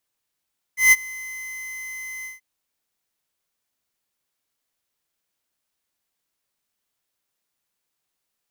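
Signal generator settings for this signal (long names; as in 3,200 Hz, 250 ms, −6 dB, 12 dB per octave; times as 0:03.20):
note with an ADSR envelope square 2,050 Hz, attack 150 ms, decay 34 ms, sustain −23 dB, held 1.48 s, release 151 ms −11 dBFS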